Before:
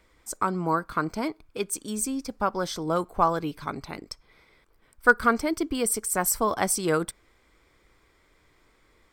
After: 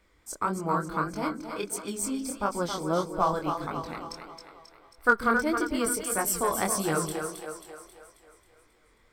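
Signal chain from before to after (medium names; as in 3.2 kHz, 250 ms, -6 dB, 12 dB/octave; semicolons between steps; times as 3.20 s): two-band feedback delay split 380 Hz, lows 141 ms, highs 269 ms, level -6.5 dB; chorus 1.6 Hz, delay 19.5 ms, depth 7.4 ms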